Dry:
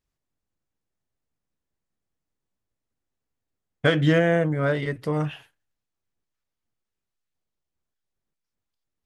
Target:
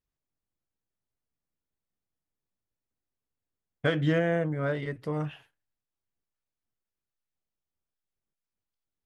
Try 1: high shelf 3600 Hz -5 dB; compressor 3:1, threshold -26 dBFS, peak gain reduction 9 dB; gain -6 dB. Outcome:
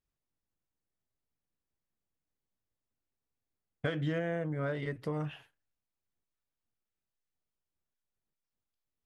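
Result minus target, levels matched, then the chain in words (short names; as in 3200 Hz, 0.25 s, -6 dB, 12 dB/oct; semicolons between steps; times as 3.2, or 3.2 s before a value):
compressor: peak gain reduction +9 dB
high shelf 3600 Hz -5 dB; gain -6 dB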